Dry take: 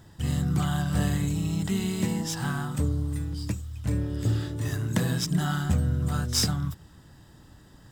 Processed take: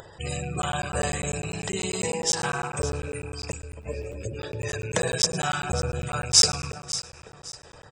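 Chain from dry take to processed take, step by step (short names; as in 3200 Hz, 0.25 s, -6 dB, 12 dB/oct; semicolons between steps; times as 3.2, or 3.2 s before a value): rattling part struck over -29 dBFS, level -31 dBFS; dynamic EQ 6800 Hz, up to +7 dB, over -48 dBFS, Q 1; spectral gate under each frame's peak -30 dB strong; on a send: echo with dull and thin repeats by turns 0.277 s, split 1500 Hz, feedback 56%, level -9 dB; on the sum: downsampling 22050 Hz; feedback echo 0.113 s, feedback 45%, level -19 dB; upward compressor, threshold -39 dBFS; resonant low shelf 350 Hz -9.5 dB, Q 3; crackling interface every 0.10 s, samples 512, zero, from 0.62; 3.74–4.39 ensemble effect; gain +4.5 dB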